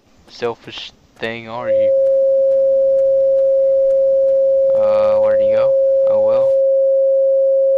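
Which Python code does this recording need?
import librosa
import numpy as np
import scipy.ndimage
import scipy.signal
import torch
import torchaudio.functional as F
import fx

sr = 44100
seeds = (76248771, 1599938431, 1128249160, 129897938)

y = fx.fix_declip(x, sr, threshold_db=-8.0)
y = fx.notch(y, sr, hz=540.0, q=30.0)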